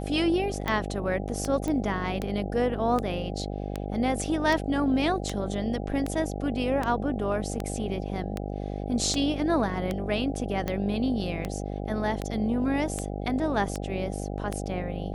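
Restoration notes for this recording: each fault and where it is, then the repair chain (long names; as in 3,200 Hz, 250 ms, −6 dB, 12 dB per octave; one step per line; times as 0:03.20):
mains buzz 50 Hz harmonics 16 −33 dBFS
scratch tick 78 rpm −15 dBFS
0:01.68: click −18 dBFS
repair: click removal
hum removal 50 Hz, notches 16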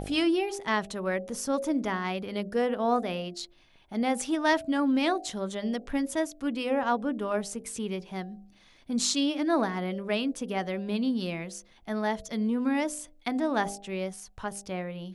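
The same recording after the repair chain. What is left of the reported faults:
none of them is left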